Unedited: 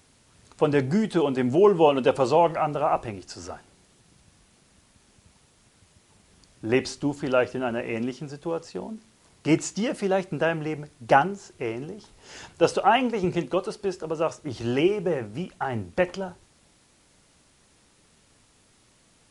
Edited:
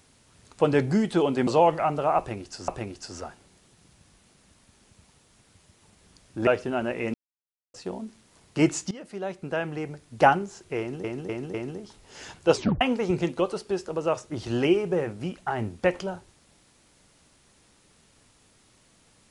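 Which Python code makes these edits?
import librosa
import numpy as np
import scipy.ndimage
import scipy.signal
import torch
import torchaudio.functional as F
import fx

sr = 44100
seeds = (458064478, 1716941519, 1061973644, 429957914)

y = fx.edit(x, sr, fx.cut(start_s=1.47, length_s=0.77),
    fx.repeat(start_s=2.95, length_s=0.5, count=2),
    fx.cut(start_s=6.74, length_s=0.62),
    fx.silence(start_s=8.03, length_s=0.6),
    fx.fade_in_from(start_s=9.8, length_s=1.27, floor_db=-17.5),
    fx.repeat(start_s=11.68, length_s=0.25, count=4),
    fx.tape_stop(start_s=12.67, length_s=0.28), tone=tone)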